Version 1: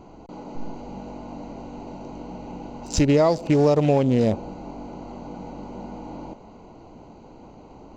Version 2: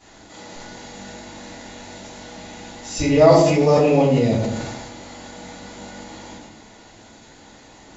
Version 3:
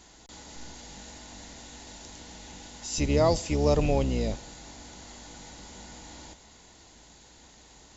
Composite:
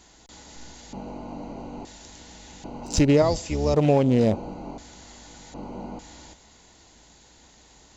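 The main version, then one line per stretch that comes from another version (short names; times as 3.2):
3
0.93–1.85 from 1
2.64–3.22 from 1
3.74–4.78 from 1
5.54–5.99 from 1
not used: 2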